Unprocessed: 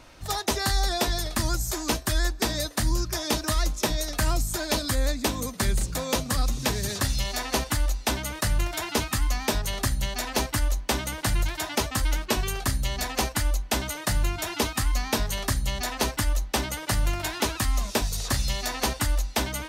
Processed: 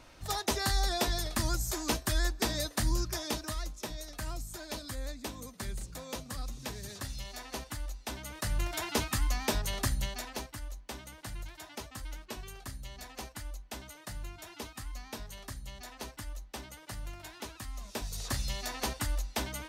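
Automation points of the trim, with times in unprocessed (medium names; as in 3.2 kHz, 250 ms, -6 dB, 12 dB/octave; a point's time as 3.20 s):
3.05 s -5 dB
3.71 s -14 dB
8.06 s -14 dB
8.73 s -5 dB
9.99 s -5 dB
10.54 s -17 dB
17.76 s -17 dB
18.22 s -8 dB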